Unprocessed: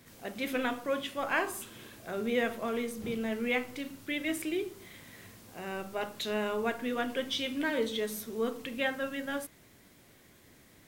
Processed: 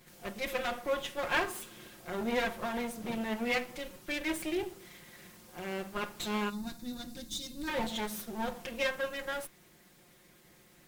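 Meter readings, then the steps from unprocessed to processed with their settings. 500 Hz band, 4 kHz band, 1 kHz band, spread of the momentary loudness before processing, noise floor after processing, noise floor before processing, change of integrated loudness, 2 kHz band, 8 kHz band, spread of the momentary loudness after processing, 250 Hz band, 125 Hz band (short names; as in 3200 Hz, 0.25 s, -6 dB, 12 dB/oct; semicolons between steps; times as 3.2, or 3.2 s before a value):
-3.0 dB, -1.5 dB, 0.0 dB, 13 LU, -61 dBFS, -59 dBFS, -2.0 dB, -1.0 dB, +0.5 dB, 12 LU, -2.5 dB, +1.0 dB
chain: minimum comb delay 5.6 ms; spectral gain 6.49–7.68, 330–3500 Hz -17 dB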